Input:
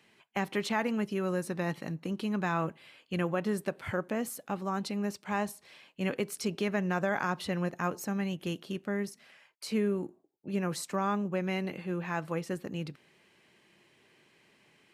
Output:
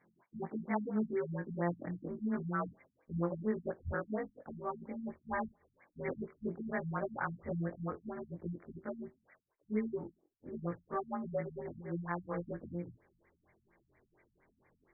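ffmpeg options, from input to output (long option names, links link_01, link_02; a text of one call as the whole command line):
ffmpeg -i in.wav -af "afftfilt=real='re':imag='-im':win_size=2048:overlap=0.75,asubboost=boost=10:cutoff=53,afftfilt=real='re*lt(b*sr/1024,230*pow(2400/230,0.5+0.5*sin(2*PI*4.3*pts/sr)))':imag='im*lt(b*sr/1024,230*pow(2400/230,0.5+0.5*sin(2*PI*4.3*pts/sr)))':win_size=1024:overlap=0.75,volume=2dB" out.wav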